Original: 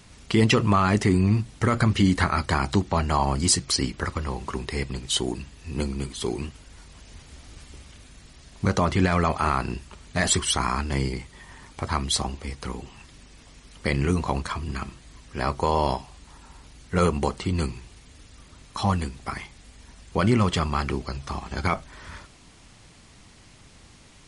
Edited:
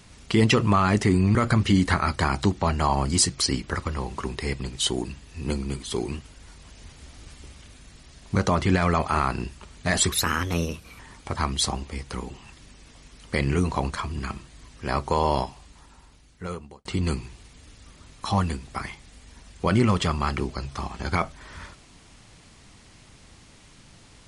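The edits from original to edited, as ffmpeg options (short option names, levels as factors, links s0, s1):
-filter_complex "[0:a]asplit=5[s0][s1][s2][s3][s4];[s0]atrim=end=1.352[s5];[s1]atrim=start=1.648:end=10.424[s6];[s2]atrim=start=10.42:end=11.51,asetpts=PTS-STARTPTS,asetrate=55125,aresample=44100,atrim=end_sample=38455,asetpts=PTS-STARTPTS[s7];[s3]atrim=start=11.506:end=17.37,asetpts=PTS-STARTPTS,afade=t=out:st=4.384:d=1.48[s8];[s4]atrim=start=17.37,asetpts=PTS-STARTPTS,afade=t=in:d=0.004:c=hsin[s9];[s5][s6]acrossfade=d=0.004:c1=hsin:c2=hsin[s10];[s10][s7]acrossfade=d=0.004:c1=hsin:c2=hsin[s11];[s8][s9]concat=n=2:v=0:a=1[s12];[s11][s12]acrossfade=d=0.004:c1=hsin:c2=hsin"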